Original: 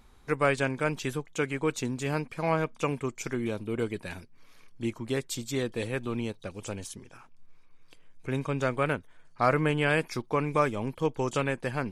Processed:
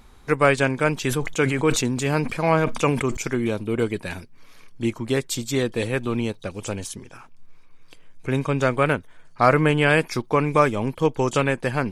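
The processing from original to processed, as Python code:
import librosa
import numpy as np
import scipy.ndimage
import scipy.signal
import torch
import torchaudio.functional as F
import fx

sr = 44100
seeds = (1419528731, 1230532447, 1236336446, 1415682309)

y = fx.sustainer(x, sr, db_per_s=57.0, at=(1.02, 3.17))
y = F.gain(torch.from_numpy(y), 7.5).numpy()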